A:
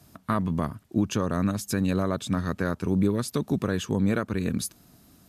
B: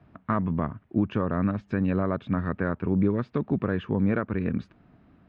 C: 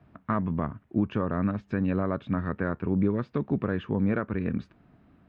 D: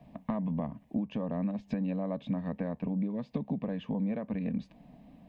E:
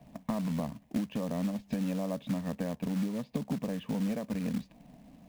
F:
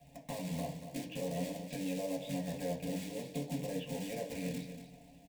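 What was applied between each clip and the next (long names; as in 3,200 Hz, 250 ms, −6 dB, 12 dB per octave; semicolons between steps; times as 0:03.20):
low-pass filter 2,400 Hz 24 dB per octave
tuned comb filter 70 Hz, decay 0.16 s, harmonics all, mix 30%
downward compressor 10 to 1, threshold −33 dBFS, peak gain reduction 14 dB; phaser with its sweep stopped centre 370 Hz, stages 6; level +7 dB
floating-point word with a short mantissa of 2 bits
phaser with its sweep stopped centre 520 Hz, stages 4; repeating echo 236 ms, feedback 26%, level −10 dB; convolution reverb RT60 0.45 s, pre-delay 3 ms, DRR −1 dB; level +1.5 dB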